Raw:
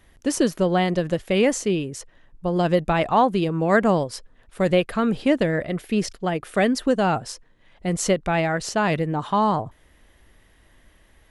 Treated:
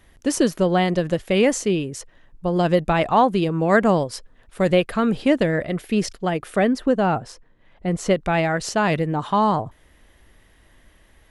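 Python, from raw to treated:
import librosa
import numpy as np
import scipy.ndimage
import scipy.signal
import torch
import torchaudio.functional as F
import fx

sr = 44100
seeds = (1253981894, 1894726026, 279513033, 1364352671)

y = fx.high_shelf(x, sr, hz=3100.0, db=-11.0, at=(6.56, 8.11))
y = y * librosa.db_to_amplitude(1.5)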